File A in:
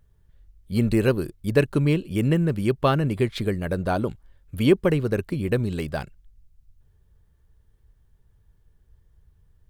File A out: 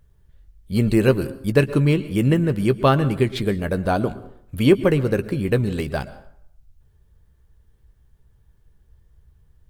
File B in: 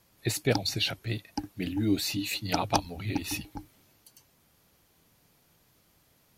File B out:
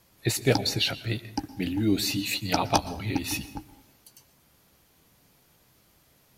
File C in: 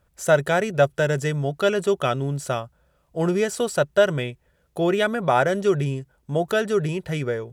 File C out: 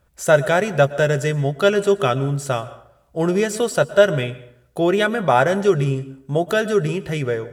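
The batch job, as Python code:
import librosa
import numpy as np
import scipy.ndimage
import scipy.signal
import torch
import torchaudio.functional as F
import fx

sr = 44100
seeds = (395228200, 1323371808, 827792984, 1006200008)

y = fx.doubler(x, sr, ms=15.0, db=-12.5)
y = fx.rev_plate(y, sr, seeds[0], rt60_s=0.68, hf_ratio=0.65, predelay_ms=105, drr_db=16.0)
y = y * 10.0 ** (3.0 / 20.0)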